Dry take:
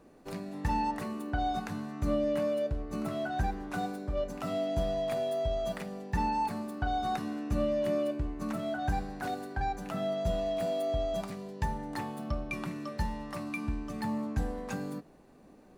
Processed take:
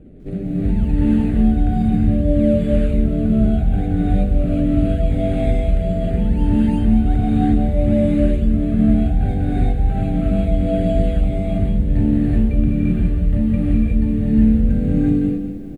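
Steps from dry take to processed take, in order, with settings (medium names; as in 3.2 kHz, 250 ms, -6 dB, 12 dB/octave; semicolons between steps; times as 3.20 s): bass shelf 110 Hz +10 dB; in parallel at -3.5 dB: decimation with a swept rate 21×, swing 100% 1.2 Hz; on the sum: tilt shelf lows +9 dB, about 850 Hz; static phaser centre 2.4 kHz, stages 4; delay 175 ms -11 dB; reverse; compression 4:1, threshold -22 dBFS, peak gain reduction 14 dB; reverse; steep low-pass 10 kHz 36 dB/octave; gated-style reverb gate 400 ms rising, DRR -7.5 dB; bit-crushed delay 199 ms, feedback 55%, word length 9-bit, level -13 dB; trim +2.5 dB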